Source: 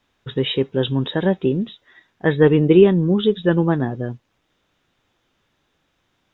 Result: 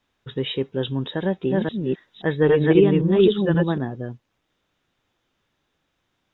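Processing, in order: 1.16–3.78 s: chunks repeated in reverse 265 ms, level 0 dB; trim -5 dB

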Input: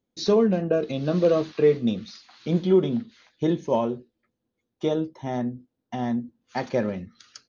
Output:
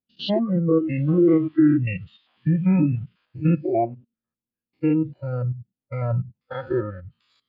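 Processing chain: spectrogram pixelated in time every 100 ms; formant shift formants -5 st; low-pass that closes with the level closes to 2.8 kHz, closed at -21.5 dBFS; spectral noise reduction 19 dB; trim +6.5 dB

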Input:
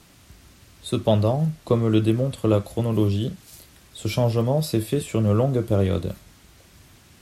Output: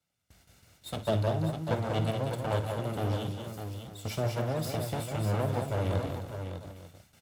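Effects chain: comb filter that takes the minimum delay 1.4 ms; high-pass 79 Hz 12 dB/octave; gate with hold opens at -42 dBFS; multi-tap echo 56/190/247/602/895 ms -13.5/-6/-16.5/-7.5/-17 dB; trim -7.5 dB

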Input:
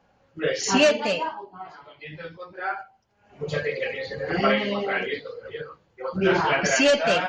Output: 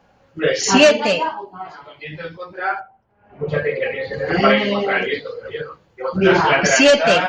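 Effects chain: 2.79–4.12 s: low-pass 1.3 kHz -> 2.8 kHz 12 dB/octave; trim +7 dB

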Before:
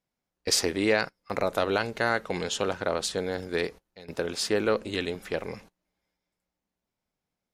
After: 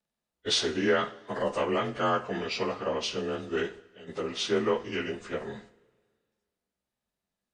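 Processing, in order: frequency axis rescaled in octaves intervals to 89%; two-slope reverb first 0.39 s, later 1.7 s, from -18 dB, DRR 7.5 dB

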